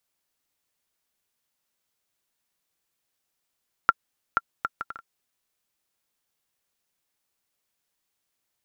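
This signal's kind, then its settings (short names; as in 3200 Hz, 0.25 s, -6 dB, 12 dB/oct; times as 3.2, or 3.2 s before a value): bouncing ball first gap 0.48 s, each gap 0.58, 1370 Hz, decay 36 ms -4 dBFS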